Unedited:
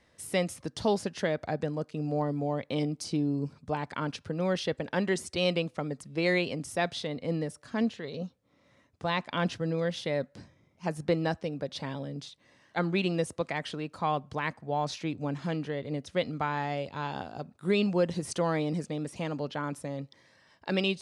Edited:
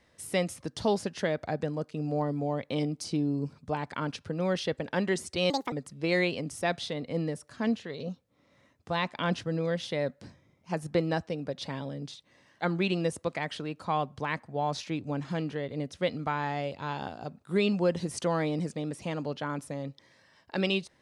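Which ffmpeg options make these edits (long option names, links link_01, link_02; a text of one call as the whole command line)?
ffmpeg -i in.wav -filter_complex "[0:a]asplit=3[link_01][link_02][link_03];[link_01]atrim=end=5.504[link_04];[link_02]atrim=start=5.5:end=5.86,asetpts=PTS-STARTPTS,asetrate=71883,aresample=44100[link_05];[link_03]atrim=start=5.856[link_06];[link_04][link_05]acrossfade=duration=0.004:curve1=hsin:curve2=hsin[link_07];[link_07][link_06]acrossfade=duration=0.004:curve1=hsin:curve2=hsin" out.wav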